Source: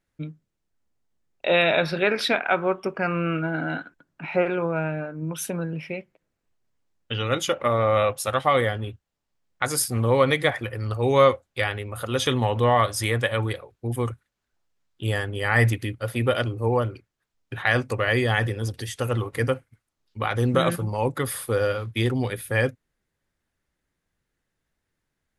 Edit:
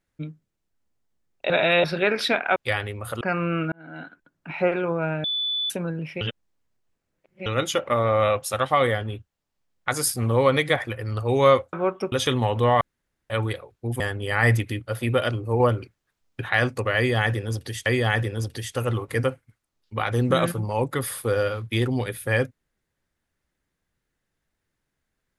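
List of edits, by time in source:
1.5–1.84 reverse
2.56–2.95 swap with 11.47–12.12
3.46–4.23 fade in
4.98–5.44 bleep 3480 Hz -23 dBFS
5.95–7.2 reverse
12.81–13.3 room tone
14–15.13 cut
16.73–17.54 gain +3.5 dB
18.1–18.99 loop, 2 plays

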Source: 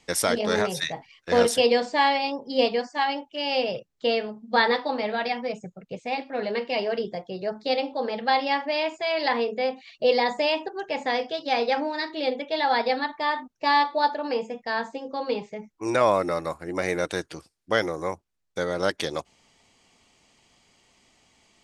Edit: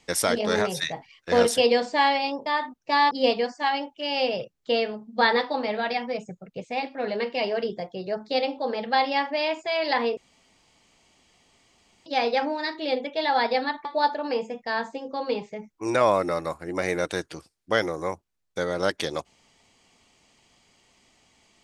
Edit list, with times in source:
9.52–11.41 room tone
13.2–13.85 move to 2.46

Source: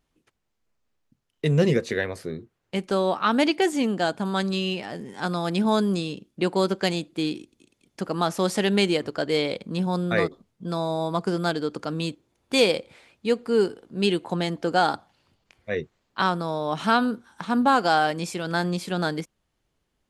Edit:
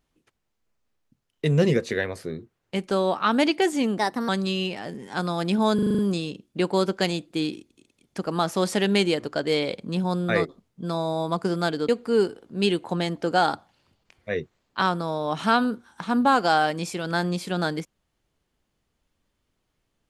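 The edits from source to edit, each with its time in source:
3.98–4.35 speed 121%
5.81 stutter 0.04 s, 7 plays
11.71–13.29 cut

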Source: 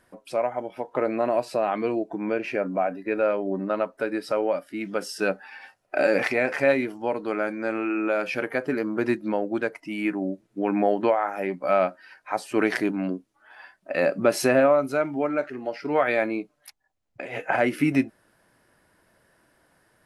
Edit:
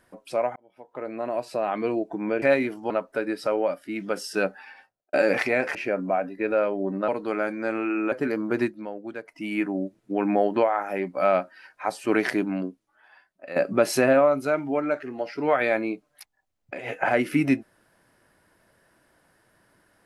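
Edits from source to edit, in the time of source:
0.56–1.92 fade in
2.42–3.75 swap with 6.6–7.08
5.41–5.98 studio fade out
8.12–8.59 cut
9.09–9.89 dip -9.5 dB, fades 0.15 s
12.97–14.03 fade out quadratic, to -12 dB

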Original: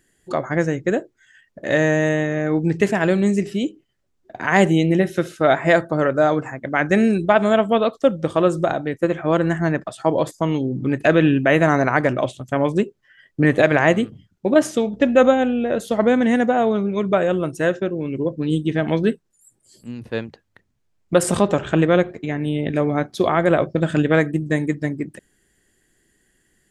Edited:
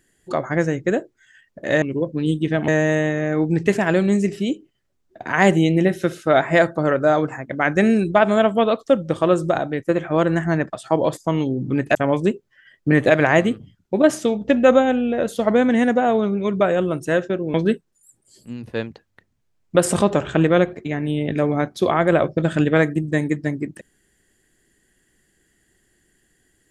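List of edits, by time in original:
11.09–12.47 cut
18.06–18.92 move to 1.82

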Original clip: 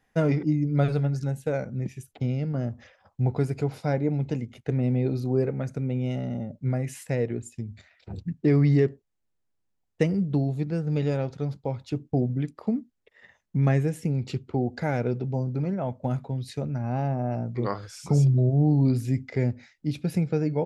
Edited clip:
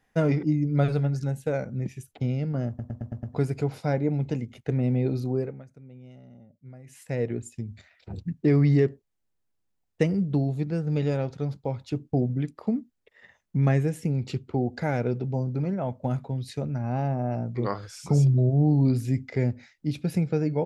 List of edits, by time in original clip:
2.68 stutter in place 0.11 s, 6 plays
5.22–7.27 dip -19 dB, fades 0.43 s

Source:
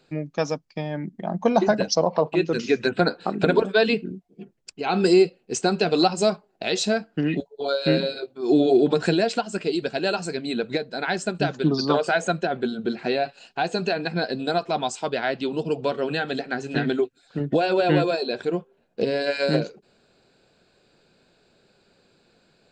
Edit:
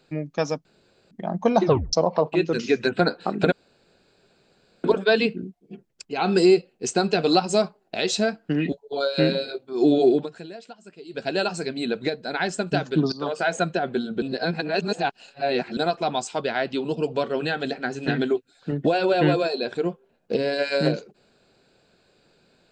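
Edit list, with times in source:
0.65–1.11 room tone
1.63 tape stop 0.30 s
3.52 insert room tone 1.32 s
8.79–9.94 dip -18 dB, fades 0.18 s
11.8–12.23 fade in, from -15.5 dB
12.9–14.45 reverse

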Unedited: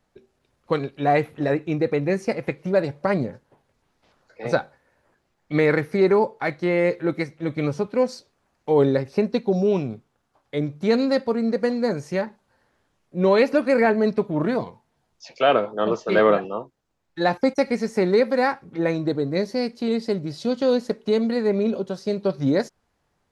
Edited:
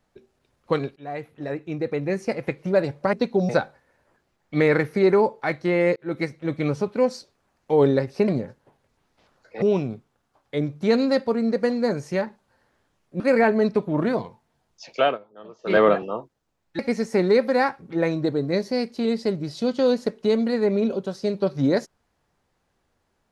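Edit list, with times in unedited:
0.96–2.62 fade in, from -18.5 dB
3.13–4.47 swap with 9.26–9.62
6.94–7.19 fade in
13.2–13.62 cut
15.43–16.17 dip -21 dB, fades 0.17 s
17.21–17.62 cut

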